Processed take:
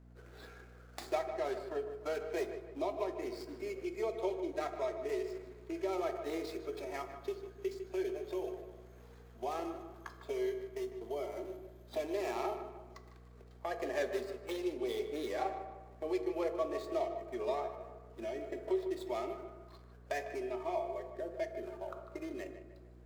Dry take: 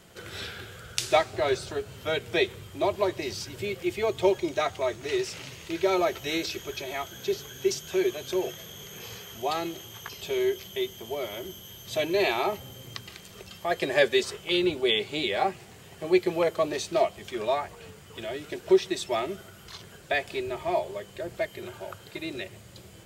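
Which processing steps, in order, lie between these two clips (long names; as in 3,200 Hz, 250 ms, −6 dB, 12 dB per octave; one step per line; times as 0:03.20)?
running median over 15 samples
noise reduction from a noise print of the clip's start 7 dB
noise gate −45 dBFS, range −7 dB
elliptic high-pass filter 240 Hz
downward compressor 2 to 1, threshold −42 dBFS, peak gain reduction 14.5 dB
mains hum 60 Hz, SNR 18 dB
feedback echo with a low-pass in the loop 152 ms, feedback 45%, low-pass 2,800 Hz, level −10 dB
convolution reverb RT60 1.2 s, pre-delay 3 ms, DRR 7.5 dB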